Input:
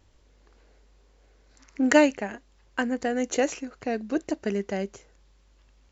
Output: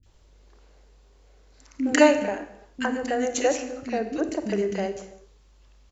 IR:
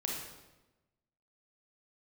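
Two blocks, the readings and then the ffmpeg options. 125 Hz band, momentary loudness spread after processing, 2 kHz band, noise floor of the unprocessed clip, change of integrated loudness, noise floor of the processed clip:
n/a, 13 LU, +0.5 dB, -60 dBFS, +1.5 dB, -56 dBFS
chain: -filter_complex "[0:a]acrossover=split=270|1800[a][b][c];[c]adelay=30[d];[b]adelay=60[e];[a][e][d]amix=inputs=3:normalize=0,asplit=2[f][g];[1:a]atrim=start_sample=2205,afade=t=out:st=0.41:d=0.01,atrim=end_sample=18522[h];[g][h]afir=irnorm=-1:irlink=0,volume=-7dB[i];[f][i]amix=inputs=2:normalize=0"

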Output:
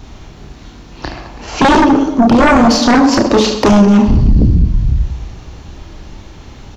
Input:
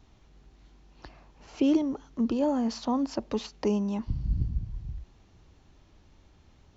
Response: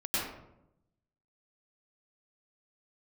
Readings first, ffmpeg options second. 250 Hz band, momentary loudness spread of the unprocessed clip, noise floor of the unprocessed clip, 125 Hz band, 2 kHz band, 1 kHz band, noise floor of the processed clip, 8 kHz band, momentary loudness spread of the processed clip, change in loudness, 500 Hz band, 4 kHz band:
+18.0 dB, 12 LU, -60 dBFS, +21.0 dB, +32.0 dB, +25.5 dB, -36 dBFS, n/a, 19 LU, +19.0 dB, +18.5 dB, +24.0 dB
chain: -filter_complex "[0:a]aecho=1:1:30|72|130.8|213.1|328.4:0.631|0.398|0.251|0.158|0.1,aeval=exprs='0.266*sin(PI/2*3.98*val(0)/0.266)':c=same,asplit=2[a][b];[1:a]atrim=start_sample=2205[c];[b][c]afir=irnorm=-1:irlink=0,volume=-20dB[d];[a][d]amix=inputs=2:normalize=0,volume=6.5dB"

